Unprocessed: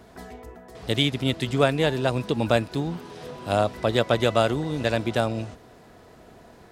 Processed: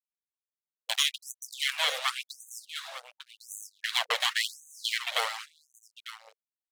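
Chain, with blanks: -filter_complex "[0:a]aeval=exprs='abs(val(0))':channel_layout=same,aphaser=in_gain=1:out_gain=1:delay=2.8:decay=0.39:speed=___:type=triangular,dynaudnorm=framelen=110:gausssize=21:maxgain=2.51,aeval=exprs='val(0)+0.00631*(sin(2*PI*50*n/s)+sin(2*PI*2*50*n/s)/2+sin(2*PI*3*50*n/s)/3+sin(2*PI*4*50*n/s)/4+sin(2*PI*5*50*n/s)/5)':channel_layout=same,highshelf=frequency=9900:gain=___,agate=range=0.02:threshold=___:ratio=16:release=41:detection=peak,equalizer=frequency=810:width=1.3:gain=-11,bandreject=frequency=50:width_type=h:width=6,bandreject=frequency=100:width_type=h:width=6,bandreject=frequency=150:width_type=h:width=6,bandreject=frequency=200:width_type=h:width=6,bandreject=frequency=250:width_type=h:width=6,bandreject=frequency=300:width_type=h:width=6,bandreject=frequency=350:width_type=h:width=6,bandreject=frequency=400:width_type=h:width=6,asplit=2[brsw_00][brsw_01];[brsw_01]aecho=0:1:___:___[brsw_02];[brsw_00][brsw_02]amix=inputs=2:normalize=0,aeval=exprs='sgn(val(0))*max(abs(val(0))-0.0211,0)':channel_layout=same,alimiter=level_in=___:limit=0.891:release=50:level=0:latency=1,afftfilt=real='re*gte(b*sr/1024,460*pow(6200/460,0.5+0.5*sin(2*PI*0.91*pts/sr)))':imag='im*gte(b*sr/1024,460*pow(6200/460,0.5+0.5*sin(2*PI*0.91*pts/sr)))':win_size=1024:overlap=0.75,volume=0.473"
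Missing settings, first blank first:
1.3, 2.5, 0.0398, 898, 0.2, 2.24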